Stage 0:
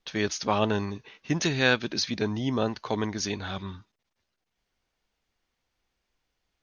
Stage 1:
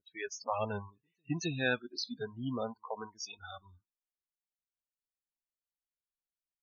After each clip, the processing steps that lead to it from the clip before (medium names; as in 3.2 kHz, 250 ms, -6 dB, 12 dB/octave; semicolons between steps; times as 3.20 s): reverse echo 265 ms -23 dB; spectral noise reduction 24 dB; loudest bins only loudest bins 32; trim -7.5 dB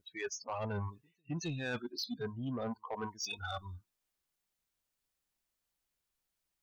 bass shelf 140 Hz +6.5 dB; reverse; compression 5:1, threshold -44 dBFS, peak gain reduction 16.5 dB; reverse; saturation -39.5 dBFS, distortion -17 dB; trim +9.5 dB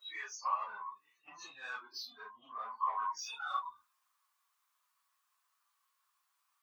phase randomisation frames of 100 ms; compression 12:1, threshold -46 dBFS, peak gain reduction 14.5 dB; resonant high-pass 1.1 kHz, resonance Q 8.7; trim +4.5 dB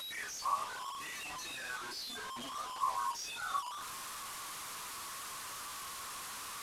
one-bit delta coder 64 kbps, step -37.5 dBFS